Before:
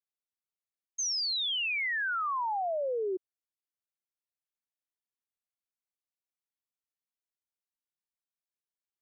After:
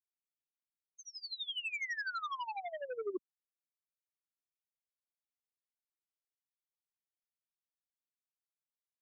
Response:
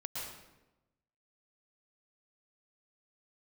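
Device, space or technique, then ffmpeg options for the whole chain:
helicopter radio: -af "highpass=360,lowpass=2.7k,aeval=exprs='val(0)*pow(10,-20*(0.5-0.5*cos(2*PI*12*n/s))/20)':c=same,asoftclip=type=hard:threshold=-36.5dB,lowpass=5.6k,afftfilt=real='re*gte(hypot(re,im),0.00501)':imag='im*gte(hypot(re,im),0.00501)':win_size=1024:overlap=0.75,asubboost=boost=12:cutoff=190,volume=2.5dB"

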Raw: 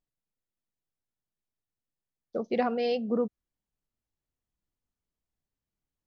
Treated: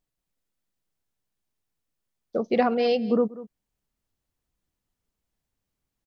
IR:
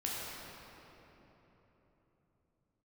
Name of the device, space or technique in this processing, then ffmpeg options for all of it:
ducked delay: -filter_complex "[0:a]asplit=3[a][b][c];[b]adelay=189,volume=-4dB[d];[c]apad=whole_len=275686[e];[d][e]sidechaincompress=threshold=-42dB:ratio=20:attack=28:release=390[f];[a][f]amix=inputs=2:normalize=0,volume=5.5dB"

